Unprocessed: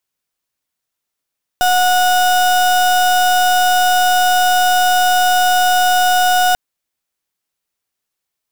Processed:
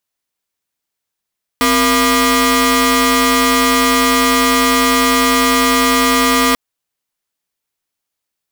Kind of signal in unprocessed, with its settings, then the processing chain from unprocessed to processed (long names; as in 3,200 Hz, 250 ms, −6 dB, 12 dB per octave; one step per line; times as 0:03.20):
pulse wave 730 Hz, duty 34% −12.5 dBFS 4.94 s
ring modulator with a square carrier 470 Hz